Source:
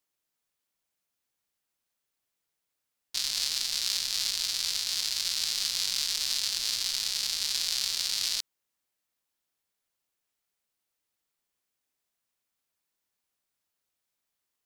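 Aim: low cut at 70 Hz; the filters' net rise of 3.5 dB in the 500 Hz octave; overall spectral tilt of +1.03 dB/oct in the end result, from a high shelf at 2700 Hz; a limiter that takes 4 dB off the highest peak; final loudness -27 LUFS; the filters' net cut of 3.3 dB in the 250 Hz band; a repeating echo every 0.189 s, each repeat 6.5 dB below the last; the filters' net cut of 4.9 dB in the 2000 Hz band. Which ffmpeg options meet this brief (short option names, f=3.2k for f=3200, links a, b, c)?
-af "highpass=70,equalizer=f=250:t=o:g=-7,equalizer=f=500:t=o:g=6.5,equalizer=f=2k:t=o:g=-4.5,highshelf=f=2.7k:g=-4,alimiter=limit=-17.5dB:level=0:latency=1,aecho=1:1:189|378|567|756|945|1134:0.473|0.222|0.105|0.0491|0.0231|0.0109,volume=4.5dB"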